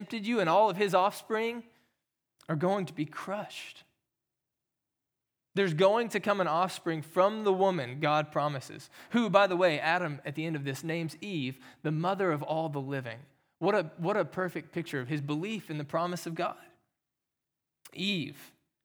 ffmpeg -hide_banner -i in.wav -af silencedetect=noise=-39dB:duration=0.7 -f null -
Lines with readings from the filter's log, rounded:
silence_start: 1.60
silence_end: 2.41 | silence_duration: 0.81
silence_start: 3.71
silence_end: 5.56 | silence_duration: 1.85
silence_start: 16.52
silence_end: 17.86 | silence_duration: 1.33